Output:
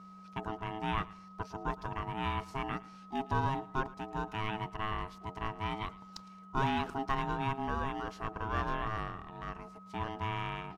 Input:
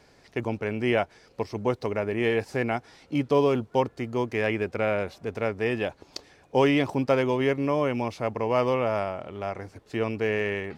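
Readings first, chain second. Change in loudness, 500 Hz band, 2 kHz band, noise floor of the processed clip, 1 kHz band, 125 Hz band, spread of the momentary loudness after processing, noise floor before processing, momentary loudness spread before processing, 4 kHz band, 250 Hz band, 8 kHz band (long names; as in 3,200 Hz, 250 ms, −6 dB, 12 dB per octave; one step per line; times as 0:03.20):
−10.0 dB, −18.0 dB, −9.0 dB, −52 dBFS, −3.0 dB, −6.5 dB, 11 LU, −58 dBFS, 11 LU, −6.5 dB, −12.0 dB, can't be measured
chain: steady tone 730 Hz −39 dBFS
repeating echo 110 ms, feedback 30%, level −20.5 dB
ring modulation 540 Hz
level −7 dB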